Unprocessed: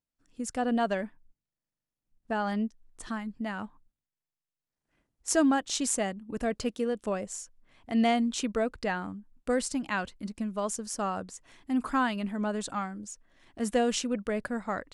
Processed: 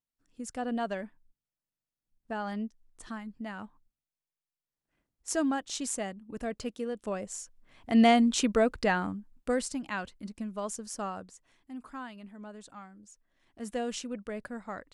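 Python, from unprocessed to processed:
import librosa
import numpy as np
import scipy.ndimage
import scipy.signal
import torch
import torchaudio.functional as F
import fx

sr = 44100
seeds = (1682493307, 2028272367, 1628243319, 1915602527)

y = fx.gain(x, sr, db=fx.line((6.89, -5.0), (7.95, 4.0), (9.06, 4.0), (9.78, -4.0), (11.02, -4.0), (11.78, -14.5), (12.76, -14.5), (13.87, -7.0)))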